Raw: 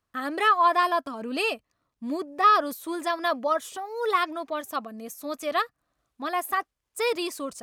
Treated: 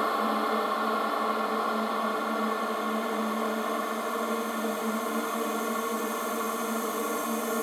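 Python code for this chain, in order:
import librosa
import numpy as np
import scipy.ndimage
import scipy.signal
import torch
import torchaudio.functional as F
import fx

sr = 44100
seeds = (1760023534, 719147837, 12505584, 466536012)

y = fx.echo_swell(x, sr, ms=84, loudest=5, wet_db=-17.5)
y = fx.paulstretch(y, sr, seeds[0], factor=37.0, window_s=0.5, from_s=4.86)
y = F.gain(torch.from_numpy(y), 5.0).numpy()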